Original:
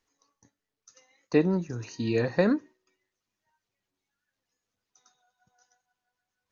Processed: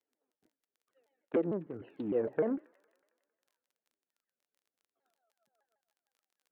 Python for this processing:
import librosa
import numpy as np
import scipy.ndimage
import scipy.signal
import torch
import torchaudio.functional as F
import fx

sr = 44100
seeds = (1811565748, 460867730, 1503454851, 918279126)

p1 = fx.wiener(x, sr, points=41)
p2 = 10.0 ** (-18.0 / 20.0) * (np.abs((p1 / 10.0 ** (-18.0 / 20.0) + 3.0) % 4.0 - 2.0) - 1.0)
p3 = p1 + F.gain(torch.from_numpy(p2), -7.0).numpy()
p4 = fx.rider(p3, sr, range_db=5, speed_s=0.5)
p5 = fx.env_lowpass_down(p4, sr, base_hz=610.0, full_db=-21.5)
p6 = scipy.signal.sosfilt(scipy.signal.ellip(4, 1.0, 40, 3400.0, 'lowpass', fs=sr, output='sos'), p5)
p7 = p6 + fx.echo_wet_highpass(p6, sr, ms=91, feedback_pct=71, hz=1400.0, wet_db=-18, dry=0)
p8 = fx.dmg_crackle(p7, sr, seeds[0], per_s=21.0, level_db=-58.0)
p9 = scipy.signal.sosfilt(scipy.signal.butter(2, 290.0, 'highpass', fs=sr, output='sos'), p8)
p10 = fx.low_shelf(p9, sr, hz=430.0, db=-7.0)
y = fx.vibrato_shape(p10, sr, shape='saw_down', rate_hz=6.6, depth_cents=250.0)